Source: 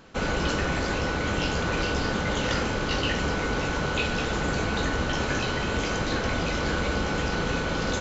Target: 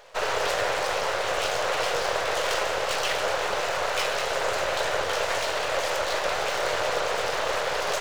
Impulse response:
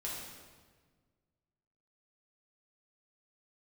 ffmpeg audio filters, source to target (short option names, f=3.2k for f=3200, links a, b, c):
-filter_complex "[0:a]aeval=exprs='abs(val(0))':c=same,lowshelf=f=370:t=q:w=3:g=-11.5,asplit=2[a][b];[1:a]atrim=start_sample=2205[c];[b][c]afir=irnorm=-1:irlink=0,volume=-10dB[d];[a][d]amix=inputs=2:normalize=0,volume=1.5dB"